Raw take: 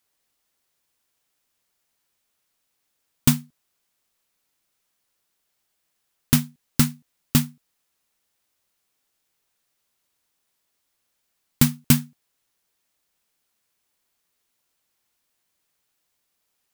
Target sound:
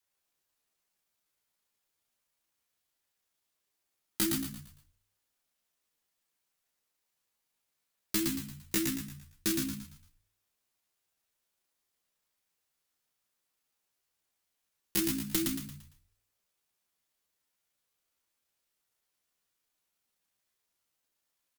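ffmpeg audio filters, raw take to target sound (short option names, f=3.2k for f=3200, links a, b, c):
-filter_complex "[0:a]bandreject=f=50:t=h:w=6,bandreject=f=100:t=h:w=6,bandreject=f=150:t=h:w=6,bandreject=f=200:t=h:w=6,bandreject=f=250:t=h:w=6,adynamicequalizer=threshold=0.0224:dfrequency=260:dqfactor=2.4:tfrequency=260:tqfactor=2.4:attack=5:release=100:ratio=0.375:range=3:mode=boostabove:tftype=bell,acrossover=split=870|1300[a][b][c];[a]alimiter=limit=-15.5dB:level=0:latency=1:release=330[d];[d][b][c]amix=inputs=3:normalize=0,aeval=exprs='0.668*(cos(1*acos(clip(val(0)/0.668,-1,1)))-cos(1*PI/2))+0.0168*(cos(4*acos(clip(val(0)/0.668,-1,1)))-cos(4*PI/2))':c=same,atempo=0.57,aeval=exprs='clip(val(0),-1,0.15)':c=same,asetrate=59976,aresample=44100,asplit=2[e][f];[f]asplit=5[g][h][i][j][k];[g]adelay=114,afreqshift=-61,volume=-4dB[l];[h]adelay=228,afreqshift=-122,volume=-12.4dB[m];[i]adelay=342,afreqshift=-183,volume=-20.8dB[n];[j]adelay=456,afreqshift=-244,volume=-29.2dB[o];[k]adelay=570,afreqshift=-305,volume=-37.6dB[p];[l][m][n][o][p]amix=inputs=5:normalize=0[q];[e][q]amix=inputs=2:normalize=0,volume=-7dB"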